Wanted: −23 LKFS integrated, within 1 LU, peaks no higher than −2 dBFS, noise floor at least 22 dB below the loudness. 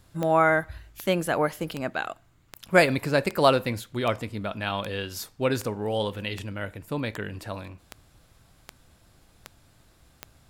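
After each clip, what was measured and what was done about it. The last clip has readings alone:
number of clicks 14; integrated loudness −26.5 LKFS; sample peak −3.5 dBFS; target loudness −23.0 LKFS
→ click removal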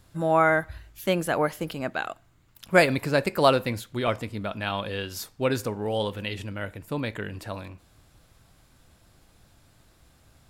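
number of clicks 0; integrated loudness −26.5 LKFS; sample peak −3.5 dBFS; target loudness −23.0 LKFS
→ level +3.5 dB
brickwall limiter −2 dBFS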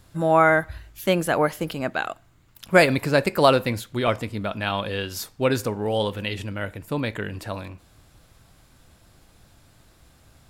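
integrated loudness −23.5 LKFS; sample peak −2.0 dBFS; background noise floor −56 dBFS

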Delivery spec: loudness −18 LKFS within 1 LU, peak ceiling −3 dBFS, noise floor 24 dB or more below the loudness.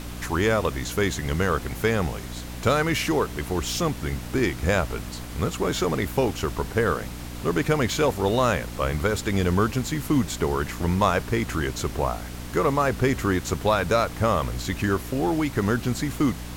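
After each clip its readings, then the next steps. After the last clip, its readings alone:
mains hum 60 Hz; hum harmonics up to 300 Hz; level of the hum −34 dBFS; background noise floor −36 dBFS; target noise floor −49 dBFS; integrated loudness −25.0 LKFS; sample peak −6.0 dBFS; target loudness −18.0 LKFS
→ hum removal 60 Hz, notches 5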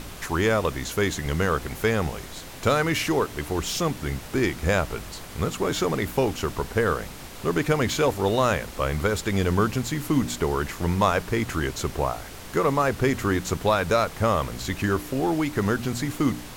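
mains hum none found; background noise floor −40 dBFS; target noise floor −49 dBFS
→ noise reduction from a noise print 9 dB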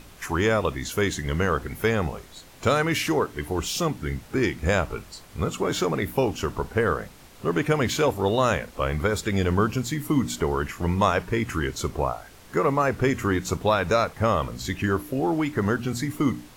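background noise floor −48 dBFS; target noise floor −49 dBFS
→ noise reduction from a noise print 6 dB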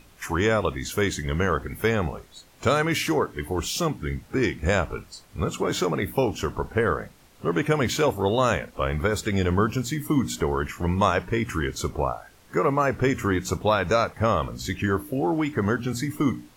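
background noise floor −54 dBFS; integrated loudness −25.0 LKFS; sample peak −6.5 dBFS; target loudness −18.0 LKFS
→ level +7 dB
brickwall limiter −3 dBFS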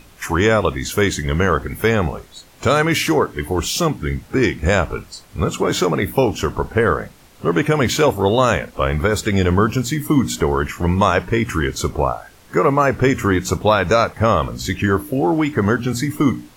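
integrated loudness −18.5 LKFS; sample peak −3.0 dBFS; background noise floor −47 dBFS

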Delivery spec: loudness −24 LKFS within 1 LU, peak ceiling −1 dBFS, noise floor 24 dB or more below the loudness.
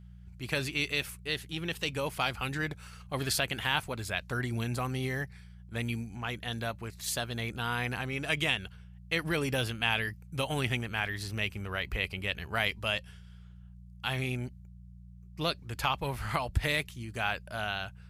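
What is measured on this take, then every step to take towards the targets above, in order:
mains hum 60 Hz; hum harmonics up to 180 Hz; level of the hum −49 dBFS; integrated loudness −33.0 LKFS; sample peak −12.5 dBFS; target loudness −24.0 LKFS
→ hum removal 60 Hz, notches 3
level +9 dB

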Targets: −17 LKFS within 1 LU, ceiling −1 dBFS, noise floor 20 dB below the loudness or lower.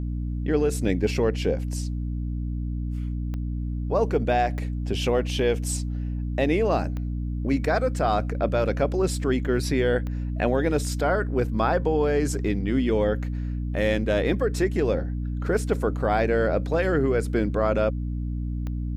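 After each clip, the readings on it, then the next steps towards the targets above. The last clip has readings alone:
number of clicks 5; mains hum 60 Hz; hum harmonics up to 300 Hz; level of the hum −26 dBFS; integrated loudness −25.5 LKFS; sample peak −9.0 dBFS; target loudness −17.0 LKFS
→ click removal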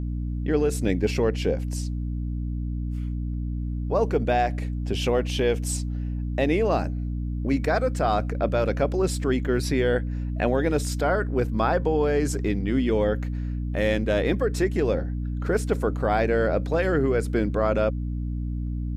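number of clicks 0; mains hum 60 Hz; hum harmonics up to 300 Hz; level of the hum −26 dBFS
→ mains-hum notches 60/120/180/240/300 Hz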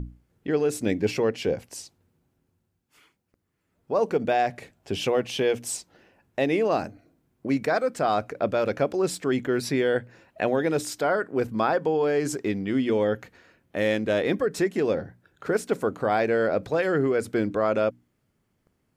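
mains hum none found; integrated loudness −25.5 LKFS; sample peak −11.0 dBFS; target loudness −17.0 LKFS
→ level +8.5 dB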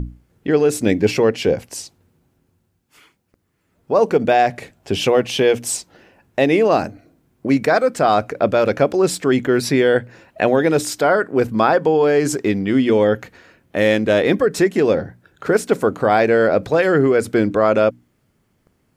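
integrated loudness −17.0 LKFS; sample peak −2.5 dBFS; background noise floor −66 dBFS

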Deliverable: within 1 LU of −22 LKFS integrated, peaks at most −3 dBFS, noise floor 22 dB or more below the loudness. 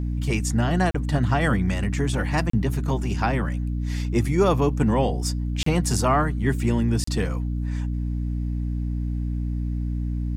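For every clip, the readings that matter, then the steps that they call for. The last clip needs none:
number of dropouts 4; longest dropout 34 ms; mains hum 60 Hz; hum harmonics up to 300 Hz; level of the hum −24 dBFS; integrated loudness −24.5 LKFS; sample peak −7.0 dBFS; target loudness −22.0 LKFS
→ repair the gap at 0:00.91/0:02.50/0:05.63/0:07.04, 34 ms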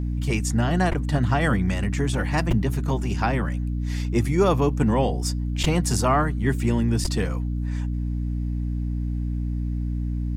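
number of dropouts 0; mains hum 60 Hz; hum harmonics up to 300 Hz; level of the hum −24 dBFS
→ mains-hum notches 60/120/180/240/300 Hz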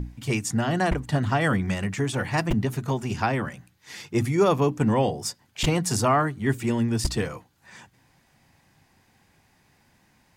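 mains hum none found; integrated loudness −25.0 LKFS; sample peak −8.5 dBFS; target loudness −22.0 LKFS
→ level +3 dB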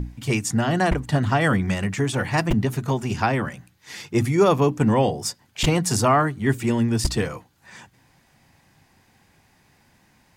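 integrated loudness −22.0 LKFS; sample peak −5.5 dBFS; background noise floor −61 dBFS

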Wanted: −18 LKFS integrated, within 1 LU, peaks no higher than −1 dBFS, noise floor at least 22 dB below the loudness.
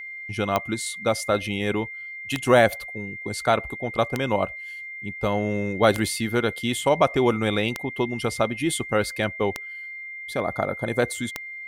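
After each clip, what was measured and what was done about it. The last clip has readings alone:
number of clicks 7; interfering tone 2,100 Hz; level of the tone −34 dBFS; integrated loudness −25.0 LKFS; sample peak −5.0 dBFS; target loudness −18.0 LKFS
→ click removal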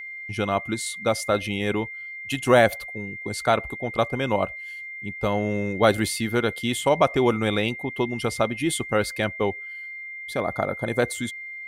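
number of clicks 0; interfering tone 2,100 Hz; level of the tone −34 dBFS
→ notch filter 2,100 Hz, Q 30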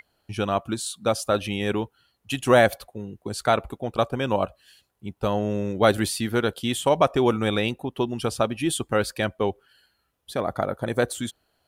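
interfering tone none found; integrated loudness −25.0 LKFS; sample peak −5.0 dBFS; target loudness −18.0 LKFS
→ level +7 dB
brickwall limiter −1 dBFS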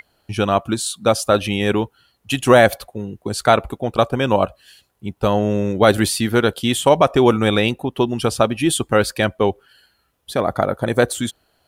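integrated loudness −18.0 LKFS; sample peak −1.0 dBFS; background noise floor −66 dBFS

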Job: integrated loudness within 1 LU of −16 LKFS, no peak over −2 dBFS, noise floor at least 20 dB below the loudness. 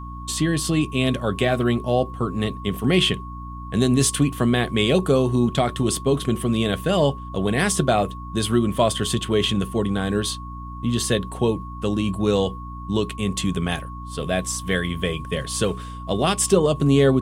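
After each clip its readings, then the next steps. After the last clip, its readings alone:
mains hum 60 Hz; hum harmonics up to 300 Hz; level of the hum −33 dBFS; interfering tone 1,100 Hz; level of the tone −37 dBFS; integrated loudness −22.0 LKFS; sample peak −5.5 dBFS; target loudness −16.0 LKFS
→ mains-hum notches 60/120/180/240/300 Hz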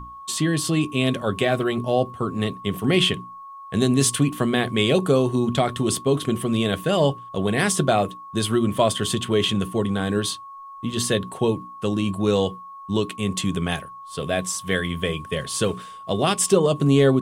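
mains hum none found; interfering tone 1,100 Hz; level of the tone −37 dBFS
→ notch filter 1,100 Hz, Q 30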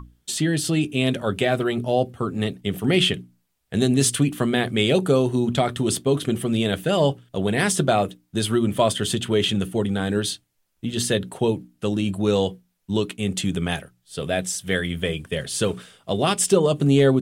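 interfering tone none found; integrated loudness −22.5 LKFS; sample peak −5.0 dBFS; target loudness −16.0 LKFS
→ level +6.5 dB
brickwall limiter −2 dBFS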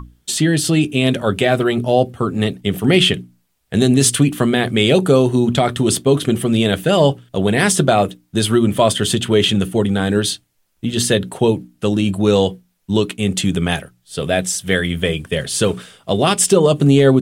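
integrated loudness −16.5 LKFS; sample peak −2.0 dBFS; background noise floor −64 dBFS

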